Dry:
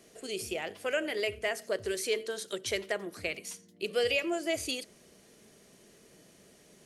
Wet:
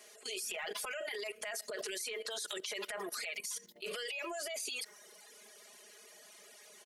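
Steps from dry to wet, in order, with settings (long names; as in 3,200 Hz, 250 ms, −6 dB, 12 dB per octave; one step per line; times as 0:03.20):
high-pass filter 730 Hz 12 dB per octave
transient designer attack −12 dB, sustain +8 dB
downward compressor 6 to 1, threshold −40 dBFS, peak gain reduction 11.5 dB
comb filter 4.8 ms, depth 93%
reverb reduction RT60 0.92 s
output level in coarse steps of 17 dB
level +10.5 dB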